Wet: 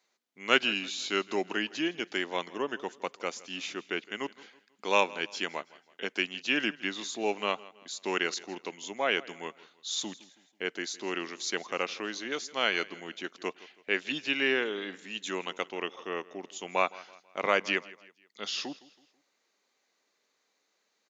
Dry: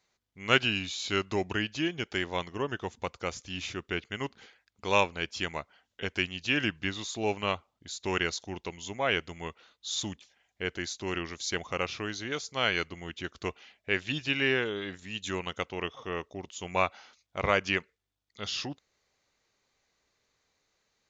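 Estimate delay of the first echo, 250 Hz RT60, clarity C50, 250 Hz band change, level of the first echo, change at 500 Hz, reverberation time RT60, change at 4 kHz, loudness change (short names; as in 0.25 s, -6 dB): 0.163 s, none, none, -1.0 dB, -20.5 dB, 0.0 dB, none, 0.0 dB, 0.0 dB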